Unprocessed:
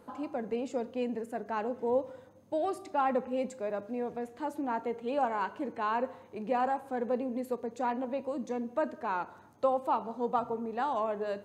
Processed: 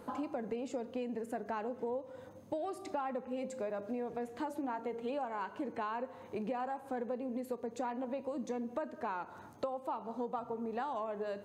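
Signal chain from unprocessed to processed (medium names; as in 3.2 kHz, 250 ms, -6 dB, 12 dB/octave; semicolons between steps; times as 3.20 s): 3.32–5.10 s: de-hum 57.76 Hz, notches 11; compression 10:1, threshold -40 dBFS, peak gain reduction 17.5 dB; trim +5 dB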